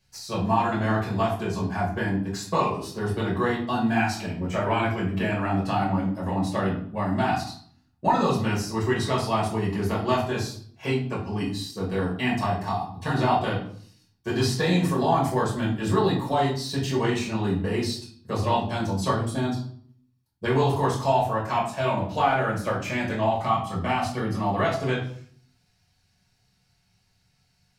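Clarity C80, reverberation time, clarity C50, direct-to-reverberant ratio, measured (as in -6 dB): 10.5 dB, 0.55 s, 6.5 dB, -5.0 dB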